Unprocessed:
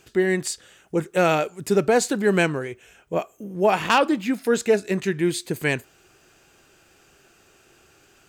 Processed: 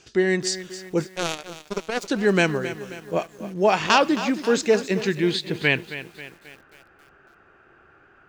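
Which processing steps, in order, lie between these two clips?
low-pass filter sweep 5,600 Hz → 1,500 Hz, 0:04.85–0:06.74
0:01.07–0:02.08: power curve on the samples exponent 3
feedback echo at a low word length 268 ms, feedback 55%, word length 7 bits, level −13 dB

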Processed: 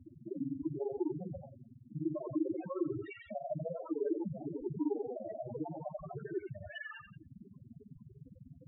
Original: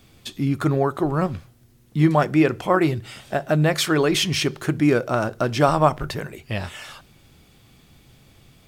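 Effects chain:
granular cloud 39 ms, grains 20 per second, spray 12 ms, pitch spread up and down by 0 semitones
in parallel at −5 dB: hard clipping −15 dBFS, distortion −14 dB
on the sum: low-pass that shuts in the quiet parts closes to 2,500 Hz, open at −17.5 dBFS
on a send: feedback echo with a high-pass in the loop 87 ms, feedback 41%, high-pass 390 Hz, level −9.5 dB
on the sum: downward compressor 8 to 1, threshold −32 dBFS, peak gain reduction 20 dB
brickwall limiter −31 dBFS, peak gain reduction 11 dB
sample-and-hold swept by an LFO 20×, swing 160% 0.25 Hz
soft clipping −38 dBFS, distortion −12 dB
Butterworth low-pass 11,000 Hz 96 dB per octave
spectral tilt +2 dB per octave
spectral peaks only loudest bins 4
parametric band 350 Hz +12.5 dB 2.4 octaves
level +4 dB

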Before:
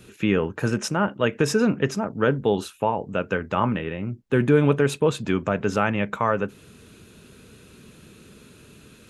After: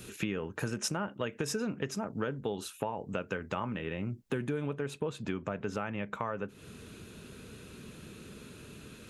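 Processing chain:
downward compressor 6 to 1, threshold −32 dBFS, peak gain reduction 18 dB
high-shelf EQ 4,600 Hz +7.5 dB, from 0:04.66 −2 dB

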